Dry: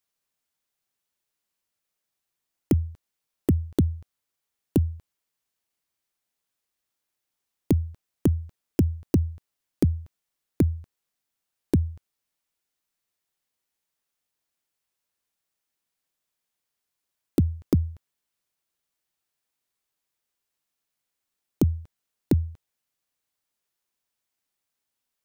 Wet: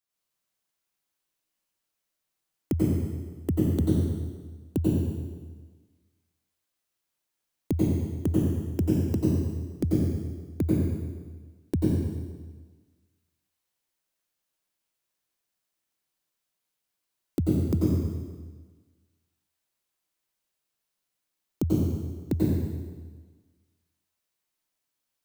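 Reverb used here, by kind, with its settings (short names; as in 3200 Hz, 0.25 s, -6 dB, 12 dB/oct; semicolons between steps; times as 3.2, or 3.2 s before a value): plate-style reverb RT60 1.4 s, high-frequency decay 0.95×, pre-delay 80 ms, DRR -6 dB; gain -6.5 dB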